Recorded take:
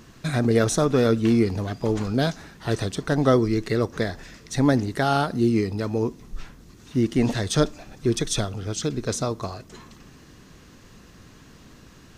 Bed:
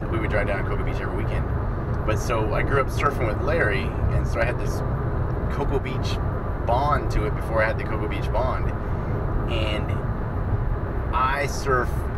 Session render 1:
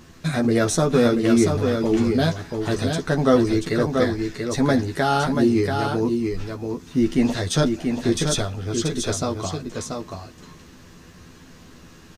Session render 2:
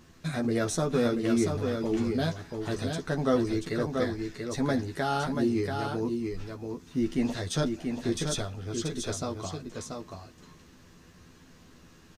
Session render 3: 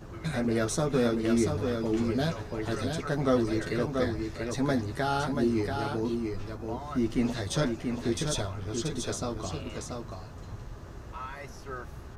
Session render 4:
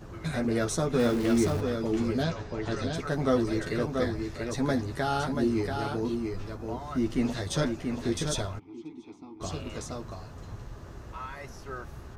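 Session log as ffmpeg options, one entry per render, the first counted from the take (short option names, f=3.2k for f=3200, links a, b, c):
-filter_complex "[0:a]asplit=2[a][b];[b]adelay=12,volume=-3.5dB[c];[a][c]amix=inputs=2:normalize=0,aecho=1:1:684:0.562"
-af "volume=-8.5dB"
-filter_complex "[1:a]volume=-18dB[a];[0:a][a]amix=inputs=2:normalize=0"
-filter_complex "[0:a]asettb=1/sr,asplit=3[a][b][c];[a]atrim=end=0.994[d];[b]atrim=start=0.99:end=1.61,asetpts=PTS-STARTPTS,afade=t=in:d=0.004:c=qsin,afade=t=out:st=0.616:d=0.004:c=qsin,aeval=exprs='val(0)+0.5*0.0211*sgn(val(0))':c=same[e];[c]atrim=start=1.606[f];[d][e]acrossfade=d=0.004:c1=hsin:c2=qsin[g];[g][f]acrossfade=d=0.004:c1=qsin:c2=hsin,asettb=1/sr,asplit=3[h][i][j];[h]atrim=end=2.234[k];[i]atrim=start=2.23:end=2.95,asetpts=PTS-STARTPTS,afade=t=in:d=0.004:c=qsin,afade=t=out:st=0.716:d=0.004:c=qsin,lowpass=f=7.3k:w=0.5412,lowpass=f=7.3k:w=1.3066[l];[j]atrim=start=2.946[m];[k][l]acrossfade=d=0.004:c1=hsin:c2=qsin[n];[n][m]acrossfade=d=0.004:c1=qsin:c2=hsin,asplit=3[o][p][q];[o]afade=t=out:st=8.58:d=0.02[r];[p]asplit=3[s][t][u];[s]bandpass=f=300:t=q:w=8,volume=0dB[v];[t]bandpass=f=870:t=q:w=8,volume=-6dB[w];[u]bandpass=f=2.24k:t=q:w=8,volume=-9dB[x];[v][w][x]amix=inputs=3:normalize=0,afade=t=in:st=8.58:d=0.02,afade=t=out:st=9.4:d=0.02[y];[q]afade=t=in:st=9.4:d=0.02[z];[r][y][z]amix=inputs=3:normalize=0"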